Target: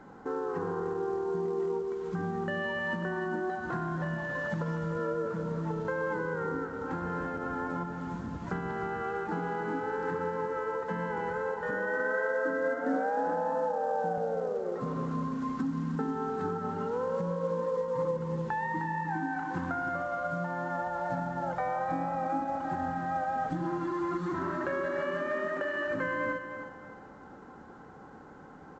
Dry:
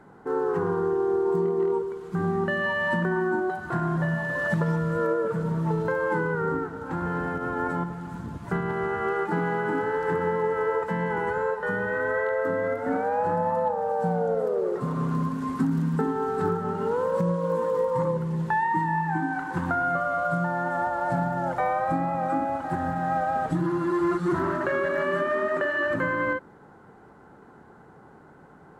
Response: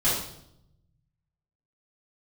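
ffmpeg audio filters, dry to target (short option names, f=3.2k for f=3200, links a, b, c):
-filter_complex "[0:a]aecho=1:1:3.8:0.31,acompressor=threshold=-36dB:ratio=2,asettb=1/sr,asplit=3[a][b][c];[a]atrim=end=11.704[d];[b]atrim=start=11.7:end=14.18,asetpts=PTS-STARTPTS,afade=t=in:d=0.004:c=qsin,afade=t=out:st=2.476:d=0.004:c=qsin,highpass=210,equalizer=f=300:t=q:w=4:g=8,equalizer=f=670:t=q:w=4:g=5,equalizer=f=1.6k:t=q:w=4:g=6,equalizer=f=2.3k:t=q:w=4:g=-7,equalizer=f=4.3k:t=q:w=4:g=-9,lowpass=f=6.1k:w=0.5412,lowpass=f=6.1k:w=1.3066[e];[c]atrim=start=14.176[f];[d][e]acrossfade=d=0.004:c1=hsin:c2=qsin[g];[g][f]acrossfade=d=0.004:c1=qsin:c2=hsin,aecho=1:1:308|616|924|1232:0.355|0.121|0.041|0.0139" -ar 16000 -c:a pcm_mulaw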